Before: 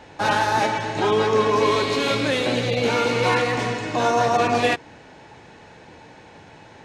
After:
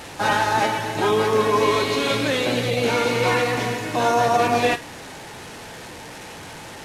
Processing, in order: one-bit delta coder 64 kbps, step -32 dBFS; on a send: high-pass 1.2 kHz + reverberation RT60 0.25 s, pre-delay 3 ms, DRR 8.5 dB

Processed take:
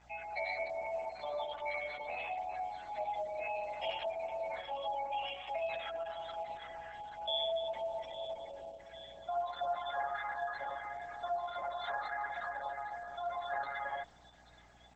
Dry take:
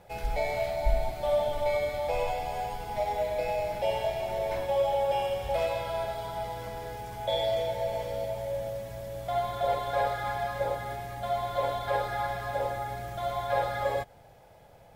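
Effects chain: Chebyshev band-pass 660–7400 Hz, order 4; spectral gate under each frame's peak -20 dB strong; tilt EQ +4 dB/octave; band-stop 990 Hz, Q 7.2; in parallel at 0 dB: peak limiter -27.5 dBFS, peak gain reduction 8.5 dB; on the sum: hum 60 Hz, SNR 26 dB; word length cut 10-bit, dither none; feedback echo behind a high-pass 831 ms, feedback 62%, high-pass 4.6 kHz, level -8 dB; trim -8.5 dB; Opus 10 kbps 48 kHz

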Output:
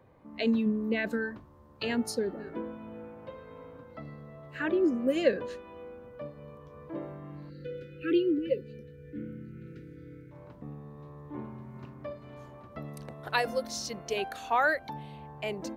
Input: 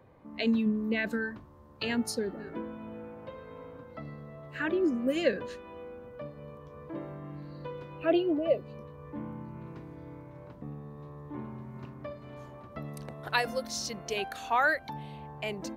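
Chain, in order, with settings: dynamic bell 480 Hz, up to +4 dB, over -42 dBFS, Q 0.79; spectral selection erased 7.49–10.32 s, 540–1300 Hz; trim -1.5 dB

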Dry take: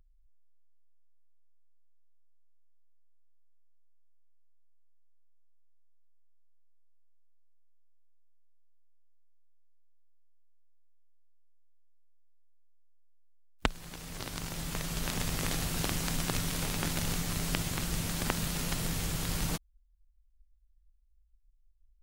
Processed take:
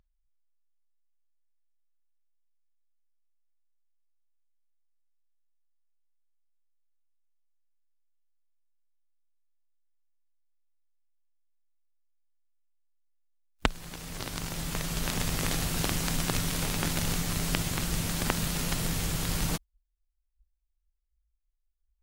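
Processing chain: spectral noise reduction 16 dB; trim +3 dB

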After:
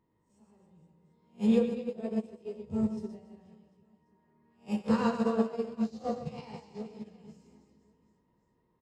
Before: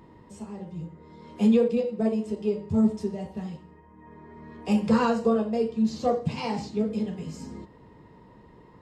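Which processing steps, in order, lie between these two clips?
reverse spectral sustain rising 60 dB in 0.33 s; reverse bouncing-ball echo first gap 120 ms, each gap 1.3×, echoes 5; upward expansion 2.5:1, over -30 dBFS; trim -4 dB

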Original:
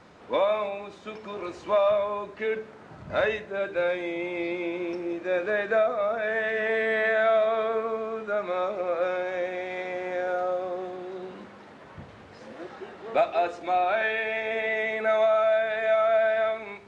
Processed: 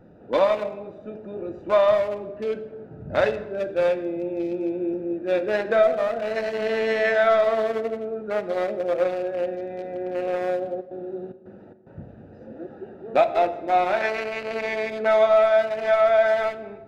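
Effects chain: local Wiener filter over 41 samples; 10.80–11.99 s: trance gate "xx.xx.x.x" 110 bpm; on a send: reverberation RT60 1.3 s, pre-delay 3 ms, DRR 10.5 dB; on the sum: trim +5.5 dB

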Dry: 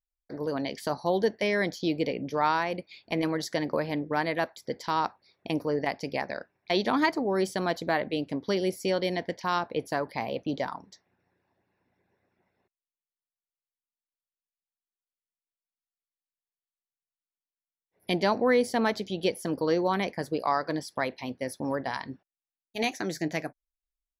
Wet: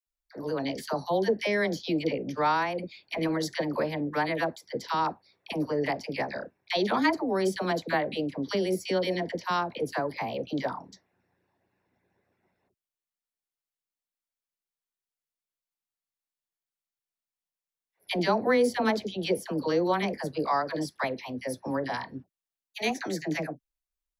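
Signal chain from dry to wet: phase dispersion lows, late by 69 ms, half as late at 720 Hz

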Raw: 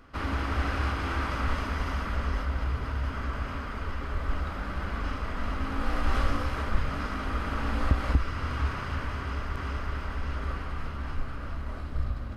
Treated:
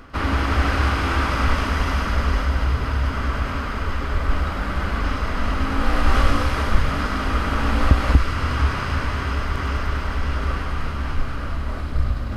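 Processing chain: reverse; upward compressor, threshold -33 dBFS; reverse; feedback echo behind a high-pass 101 ms, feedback 78%, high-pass 2.8 kHz, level -5 dB; trim +9 dB

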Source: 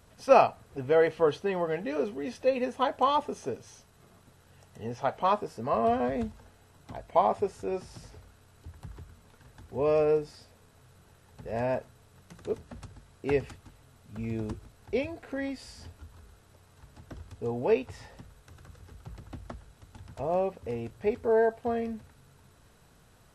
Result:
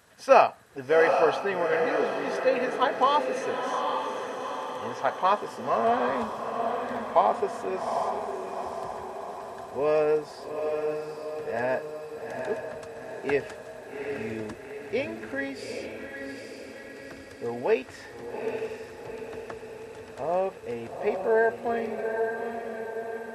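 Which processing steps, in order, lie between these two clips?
high-pass 390 Hz 6 dB/octave; peaking EQ 1.7 kHz +8 dB 0.3 oct; on a send: echo that smears into a reverb 813 ms, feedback 57%, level -5 dB; on the sum: trim +3 dB

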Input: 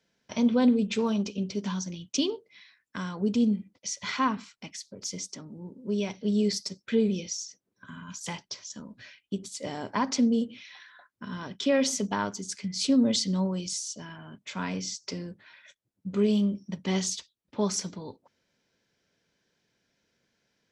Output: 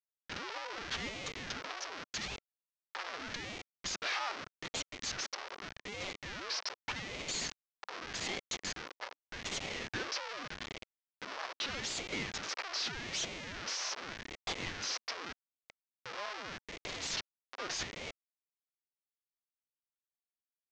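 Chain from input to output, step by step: Schmitt trigger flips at -41.5 dBFS; elliptic band-pass 750–5400 Hz, stop band 40 dB; ring modulator with a swept carrier 770 Hz, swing 75%, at 0.83 Hz

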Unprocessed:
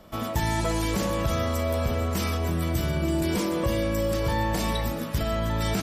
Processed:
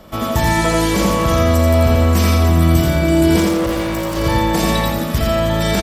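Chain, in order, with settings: 3.40–4.17 s: overload inside the chain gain 28.5 dB; feedback delay 85 ms, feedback 39%, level -3 dB; trim +8.5 dB

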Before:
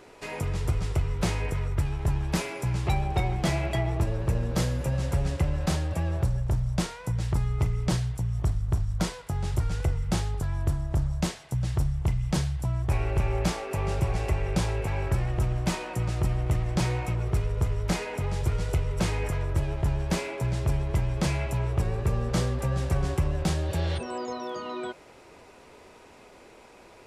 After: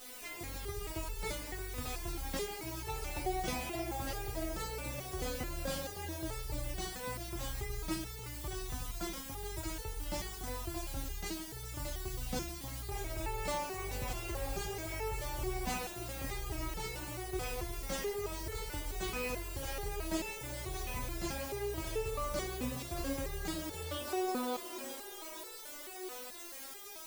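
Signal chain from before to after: added noise white -42 dBFS; two-band feedback delay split 340 Hz, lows 82 ms, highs 625 ms, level -5 dB; resonator arpeggio 4.6 Hz 250–440 Hz; trim +6.5 dB

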